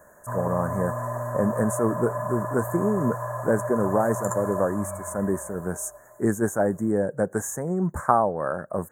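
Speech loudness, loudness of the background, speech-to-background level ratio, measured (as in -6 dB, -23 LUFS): -26.5 LUFS, -31.0 LUFS, 4.5 dB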